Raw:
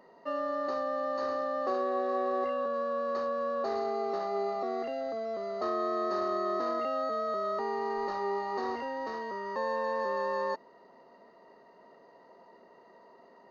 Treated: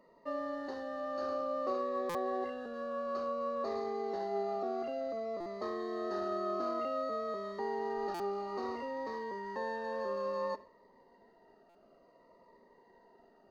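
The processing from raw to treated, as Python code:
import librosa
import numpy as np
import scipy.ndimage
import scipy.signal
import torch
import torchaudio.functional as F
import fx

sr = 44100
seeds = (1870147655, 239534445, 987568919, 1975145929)

p1 = fx.high_shelf(x, sr, hz=2200.0, db=-3.0)
p2 = fx.rev_schroeder(p1, sr, rt60_s=0.41, comb_ms=29, drr_db=14.0)
p3 = fx.backlash(p2, sr, play_db=-44.0)
p4 = p2 + F.gain(torch.from_numpy(p3), -9.5).numpy()
p5 = fx.buffer_glitch(p4, sr, at_s=(2.09, 5.4, 8.14, 11.69), block=256, repeats=9)
p6 = fx.notch_cascade(p5, sr, direction='falling', hz=0.57)
y = F.gain(torch.from_numpy(p6), -4.0).numpy()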